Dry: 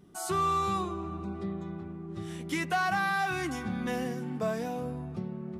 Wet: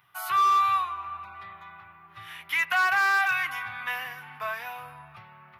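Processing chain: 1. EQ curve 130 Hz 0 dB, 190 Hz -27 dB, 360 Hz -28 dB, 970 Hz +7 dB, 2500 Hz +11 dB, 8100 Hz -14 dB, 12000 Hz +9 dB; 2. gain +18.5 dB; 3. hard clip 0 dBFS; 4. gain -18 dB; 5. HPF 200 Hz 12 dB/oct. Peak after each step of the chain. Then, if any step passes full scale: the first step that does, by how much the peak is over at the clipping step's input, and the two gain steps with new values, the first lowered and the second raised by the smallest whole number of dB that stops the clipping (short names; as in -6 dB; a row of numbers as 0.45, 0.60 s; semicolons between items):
-13.0, +5.5, 0.0, -18.0, -16.0 dBFS; step 2, 5.5 dB; step 2 +12.5 dB, step 4 -12 dB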